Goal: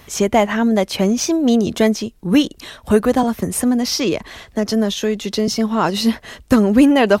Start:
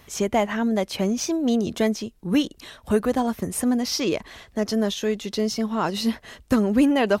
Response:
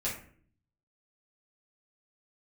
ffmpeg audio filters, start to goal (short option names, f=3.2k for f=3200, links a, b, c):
-filter_complex "[0:a]asettb=1/sr,asplit=3[a][b][c];[a]atrim=end=3.234[d];[b]atrim=start=3.23:end=5.48,asetpts=PTS-STARTPTS,afade=t=in:d=0.004:c=qsin,afade=t=out:st=2.246:d=0.004:c=qsin,acrossover=split=210[e][f];[f]acompressor=threshold=-23dB:ratio=6[g];[e][g]amix=inputs=2:normalize=0[h];[c]atrim=start=5.476[i];[d][h]acrossfade=d=0.004:c1=hsin:c2=qsin[j];[j][i]acrossfade=d=0.004:c1=qsin:c2=hsin,volume=7dB"